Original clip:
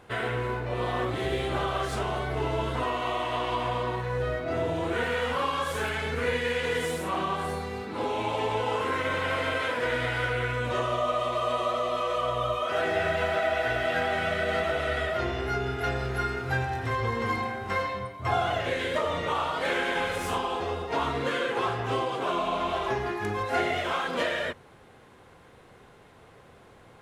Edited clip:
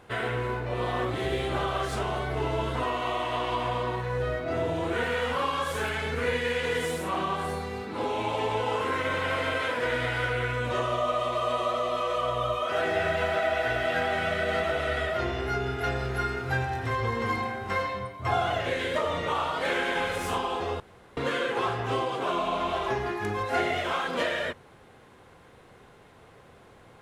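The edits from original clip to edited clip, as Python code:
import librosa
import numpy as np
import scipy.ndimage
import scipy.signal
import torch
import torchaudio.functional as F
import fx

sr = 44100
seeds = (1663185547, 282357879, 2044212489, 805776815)

y = fx.edit(x, sr, fx.room_tone_fill(start_s=20.8, length_s=0.37), tone=tone)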